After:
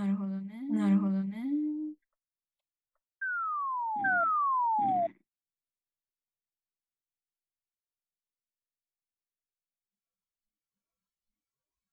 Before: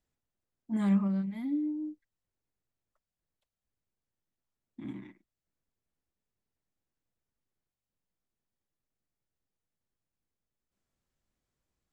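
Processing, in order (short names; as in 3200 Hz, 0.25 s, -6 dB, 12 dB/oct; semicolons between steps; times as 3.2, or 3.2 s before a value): spectral noise reduction 21 dB; painted sound fall, 4.04–5.07, 660–1600 Hz -28 dBFS; on a send: reverse echo 0.827 s -5 dB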